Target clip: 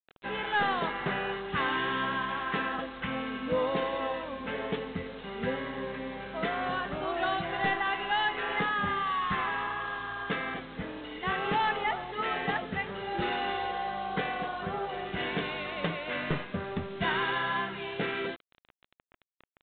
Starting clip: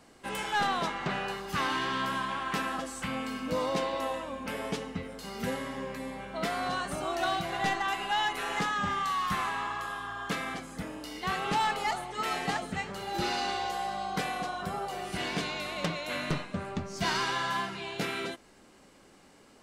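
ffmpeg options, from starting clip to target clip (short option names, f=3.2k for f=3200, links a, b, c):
-af "superequalizer=7b=1.58:11b=1.41,aresample=8000,acrusher=bits=7:mix=0:aa=0.000001,aresample=44100"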